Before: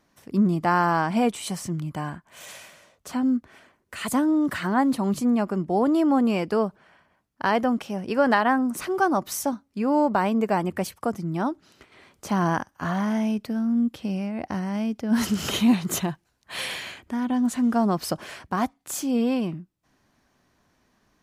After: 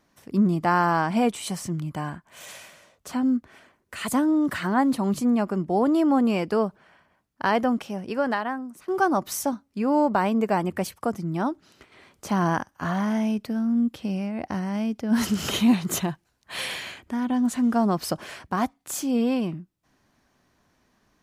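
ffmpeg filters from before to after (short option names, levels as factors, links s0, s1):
-filter_complex "[0:a]asplit=2[s0][s1];[s0]atrim=end=8.88,asetpts=PTS-STARTPTS,afade=t=out:st=7.72:d=1.16:silence=0.0841395[s2];[s1]atrim=start=8.88,asetpts=PTS-STARTPTS,afade=t=in:d=0.004:c=hsin:silence=0.0841395[s3];[s2][s3]concat=n=2:v=0:a=1"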